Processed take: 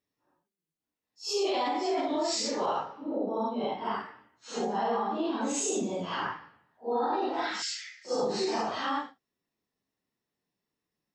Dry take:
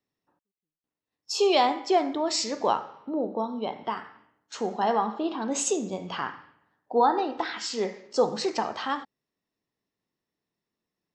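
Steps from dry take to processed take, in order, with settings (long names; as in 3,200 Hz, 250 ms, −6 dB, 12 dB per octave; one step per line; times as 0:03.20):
random phases in long frames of 200 ms
0:07.62–0:08.05: Butterworth high-pass 1,400 Hz 96 dB per octave
brickwall limiter −21 dBFS, peak gain reduction 11 dB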